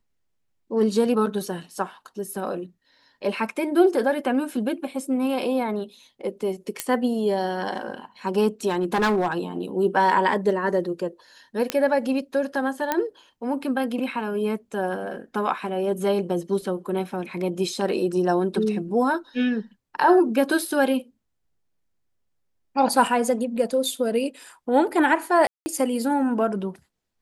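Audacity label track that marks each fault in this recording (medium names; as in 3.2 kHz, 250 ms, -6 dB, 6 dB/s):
6.800000	6.800000	pop -7 dBFS
8.680000	9.330000	clipped -17.5 dBFS
11.700000	11.700000	pop -7 dBFS
12.920000	12.920000	pop -8 dBFS
25.470000	25.660000	dropout 190 ms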